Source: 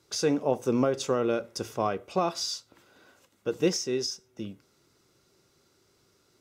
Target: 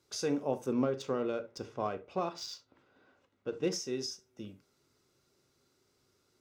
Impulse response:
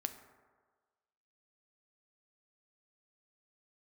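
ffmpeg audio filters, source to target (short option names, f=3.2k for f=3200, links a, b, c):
-filter_complex "[0:a]asettb=1/sr,asplit=3[a][b][c];[a]atrim=end=0.664[d];[b]atrim=start=0.66:end=3.72,asetpts=PTS-STARTPTS,afade=t=in:d=0.004:c=qsin,afade=t=out:st=3.056:d=0.004:c=qsin,adynamicsmooth=sensitivity=3.5:basefreq=3.4k[e];[c]atrim=start=3.716[f];[d][e]acrossfade=d=0.004:c1=hsin:c2=qsin[g];[g][f]acrossfade=d=0.004:c1=qsin:c2=hsin[h];[1:a]atrim=start_sample=2205,atrim=end_sample=3528[i];[h][i]afir=irnorm=-1:irlink=0,volume=-6dB"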